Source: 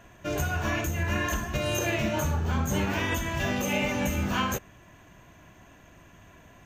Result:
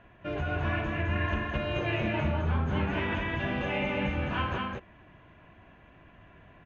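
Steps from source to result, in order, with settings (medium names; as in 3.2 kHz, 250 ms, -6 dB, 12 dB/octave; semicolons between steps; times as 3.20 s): low-pass 3.1 kHz 24 dB/octave; delay 211 ms -3 dB; trim -3.5 dB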